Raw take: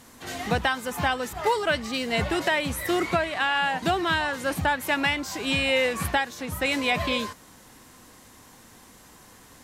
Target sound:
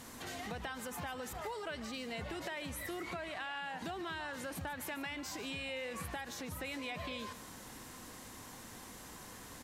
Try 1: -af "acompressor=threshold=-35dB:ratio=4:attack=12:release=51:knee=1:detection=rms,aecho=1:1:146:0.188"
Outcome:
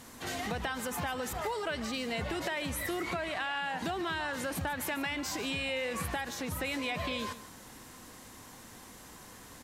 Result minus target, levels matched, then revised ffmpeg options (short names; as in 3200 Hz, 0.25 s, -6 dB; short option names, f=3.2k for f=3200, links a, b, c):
compressor: peak gain reduction -7 dB
-af "acompressor=threshold=-44.5dB:ratio=4:attack=12:release=51:knee=1:detection=rms,aecho=1:1:146:0.188"